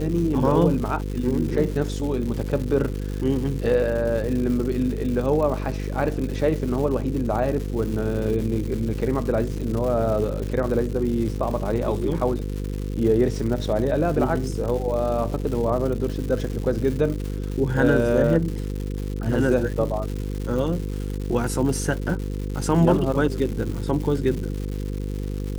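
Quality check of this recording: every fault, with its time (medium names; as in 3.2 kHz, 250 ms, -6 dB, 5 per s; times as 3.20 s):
buzz 50 Hz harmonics 10 -28 dBFS
crackle 270 per s -30 dBFS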